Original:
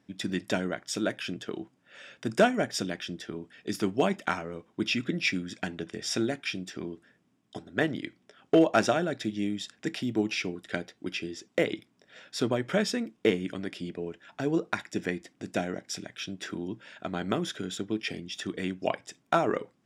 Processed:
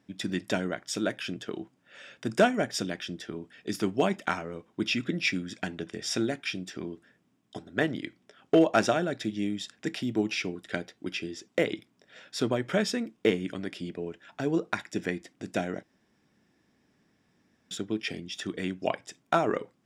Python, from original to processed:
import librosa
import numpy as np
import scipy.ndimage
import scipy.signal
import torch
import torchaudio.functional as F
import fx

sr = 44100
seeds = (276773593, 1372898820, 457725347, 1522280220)

y = fx.edit(x, sr, fx.room_tone_fill(start_s=15.83, length_s=1.88), tone=tone)